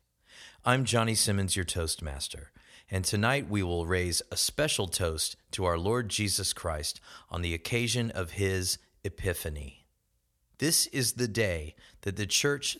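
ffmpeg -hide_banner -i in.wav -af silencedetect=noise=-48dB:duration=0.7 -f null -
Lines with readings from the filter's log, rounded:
silence_start: 9.78
silence_end: 10.60 | silence_duration: 0.81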